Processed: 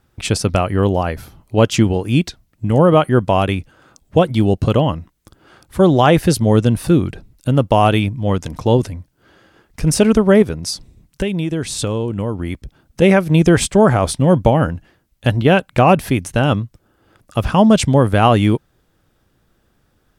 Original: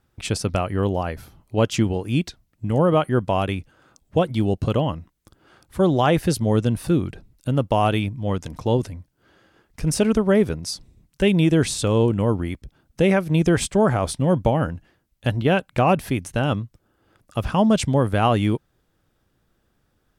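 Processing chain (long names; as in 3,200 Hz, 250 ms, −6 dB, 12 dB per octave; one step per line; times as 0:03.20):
0:10.42–0:13.02: downward compressor 6 to 1, threshold −24 dBFS, peak gain reduction 11 dB
level +6.5 dB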